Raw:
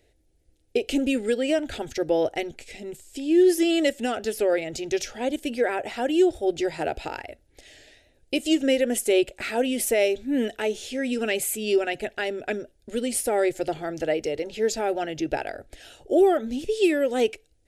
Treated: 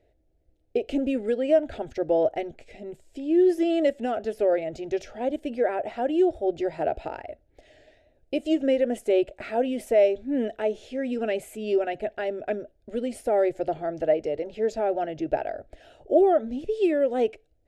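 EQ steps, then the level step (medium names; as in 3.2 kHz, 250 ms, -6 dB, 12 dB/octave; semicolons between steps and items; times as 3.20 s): low-pass 1.2 kHz 6 dB/octave; peaking EQ 640 Hz +8.5 dB 0.38 oct; -2.0 dB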